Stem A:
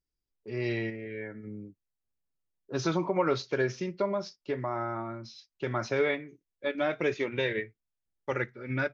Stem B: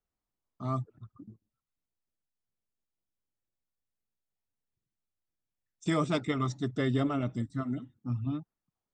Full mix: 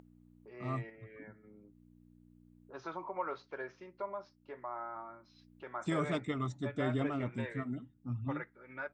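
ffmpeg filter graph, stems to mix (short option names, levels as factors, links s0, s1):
-filter_complex "[0:a]aeval=exprs='val(0)+0.00891*(sin(2*PI*60*n/s)+sin(2*PI*2*60*n/s)/2+sin(2*PI*3*60*n/s)/3+sin(2*PI*4*60*n/s)/4+sin(2*PI*5*60*n/s)/5)':c=same,bandpass=f=1000:t=q:w=1.5:csg=0,volume=0.531[s0];[1:a]equalizer=f=5100:t=o:w=0.52:g=-9,volume=0.531[s1];[s0][s1]amix=inputs=2:normalize=0,acompressor=mode=upward:threshold=0.00316:ratio=2.5"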